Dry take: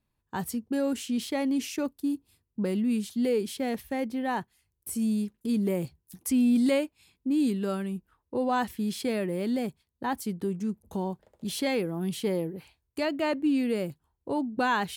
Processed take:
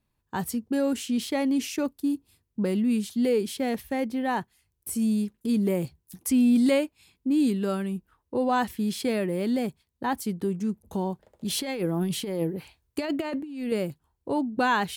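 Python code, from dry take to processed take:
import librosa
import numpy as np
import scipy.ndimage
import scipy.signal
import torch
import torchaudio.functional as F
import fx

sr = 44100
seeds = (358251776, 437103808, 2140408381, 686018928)

y = fx.over_compress(x, sr, threshold_db=-30.0, ratio=-0.5, at=(11.5, 13.72))
y = y * 10.0 ** (2.5 / 20.0)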